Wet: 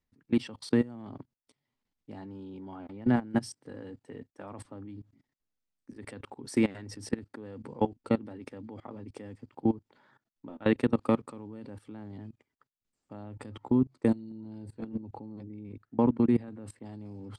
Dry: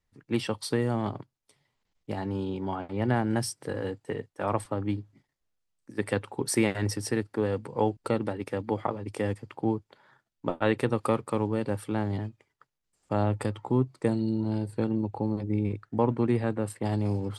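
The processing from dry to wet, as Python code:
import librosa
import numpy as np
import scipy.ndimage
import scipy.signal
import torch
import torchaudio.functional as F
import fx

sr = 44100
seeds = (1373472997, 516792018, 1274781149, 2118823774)

y = scipy.signal.sosfilt(scipy.signal.butter(2, 8000.0, 'lowpass', fs=sr, output='sos'), x)
y = fx.peak_eq(y, sr, hz=250.0, db=10.0, octaves=0.55)
y = fx.level_steps(y, sr, step_db=21)
y = y * librosa.db_to_amplitude(-1.0)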